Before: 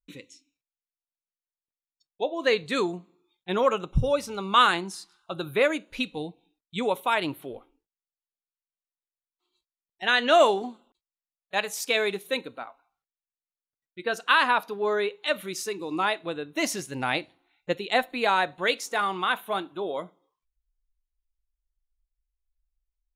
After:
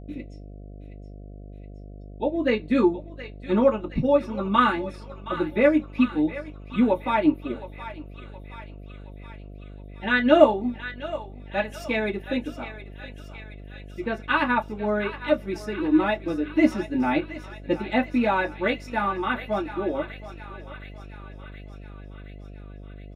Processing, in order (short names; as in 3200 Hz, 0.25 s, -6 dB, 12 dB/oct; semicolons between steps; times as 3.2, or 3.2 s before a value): comb 3.5 ms, depth 34%; transient shaper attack -1 dB, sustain -6 dB; thinning echo 0.72 s, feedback 71%, high-pass 1000 Hz, level -11 dB; reverb, pre-delay 3 ms, DRR -6.5 dB; buzz 50 Hz, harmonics 14, -26 dBFS -6 dB/oct; gain -15 dB